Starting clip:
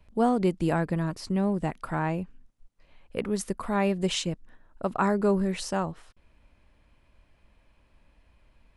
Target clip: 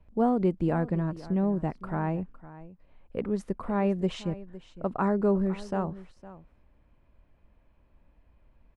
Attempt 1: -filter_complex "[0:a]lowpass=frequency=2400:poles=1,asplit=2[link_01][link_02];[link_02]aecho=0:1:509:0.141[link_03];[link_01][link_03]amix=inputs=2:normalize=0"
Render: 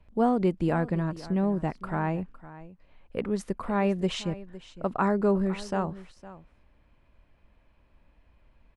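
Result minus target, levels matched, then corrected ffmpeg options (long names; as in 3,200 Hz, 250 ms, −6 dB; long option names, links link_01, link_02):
2,000 Hz band +4.0 dB
-filter_complex "[0:a]lowpass=frequency=910:poles=1,asplit=2[link_01][link_02];[link_02]aecho=0:1:509:0.141[link_03];[link_01][link_03]amix=inputs=2:normalize=0"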